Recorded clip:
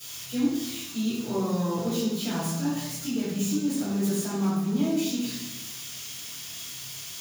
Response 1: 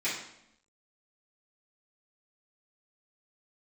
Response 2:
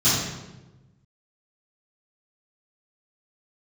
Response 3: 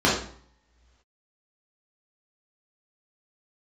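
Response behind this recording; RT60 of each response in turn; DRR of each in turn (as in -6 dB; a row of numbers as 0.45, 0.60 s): 2; 0.80, 1.1, 0.55 s; -12.0, -15.5, -6.5 dB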